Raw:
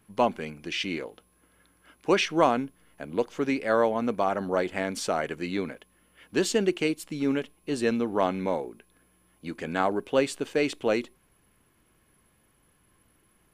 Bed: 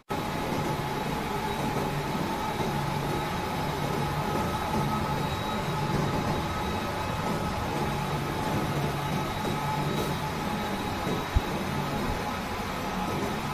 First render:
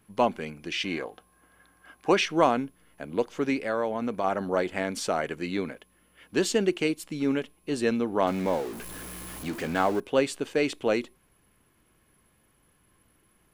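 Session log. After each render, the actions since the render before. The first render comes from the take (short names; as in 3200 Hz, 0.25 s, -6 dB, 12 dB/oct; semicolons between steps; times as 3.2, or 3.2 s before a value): 0.84–2.12 small resonant body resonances 760/1100/1600 Hz, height 10 dB, ringing for 25 ms; 3.58–4.24 compressor 2:1, threshold -26 dBFS; 8.27–10 zero-crossing step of -34.5 dBFS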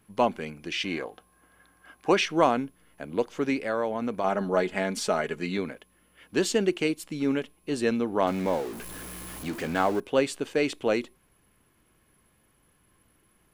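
4.24–5.58 comb 4.8 ms, depth 57%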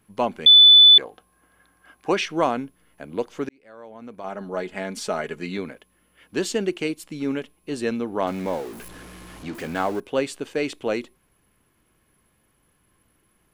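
0.46–0.98 bleep 3490 Hz -7 dBFS; 3.49–5.22 fade in; 8.88–9.55 air absorption 57 m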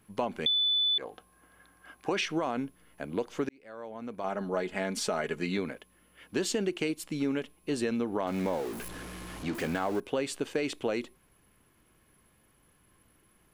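limiter -15.5 dBFS, peak gain reduction 8.5 dB; compressor, threshold -26 dBFS, peak gain reduction 8 dB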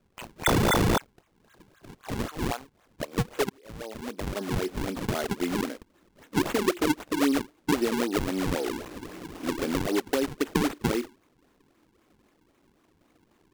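high-pass sweep 2500 Hz -> 290 Hz, 1.11–3.96; decimation with a swept rate 41×, swing 160% 3.8 Hz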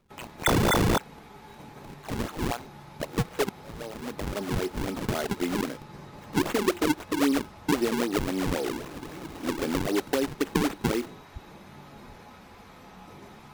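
add bed -17.5 dB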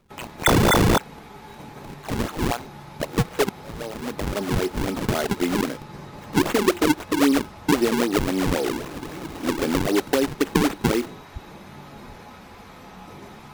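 gain +5.5 dB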